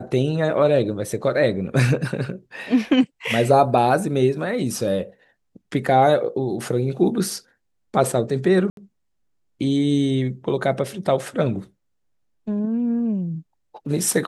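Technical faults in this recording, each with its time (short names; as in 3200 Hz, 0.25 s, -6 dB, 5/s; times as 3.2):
8.7–8.77 gap 72 ms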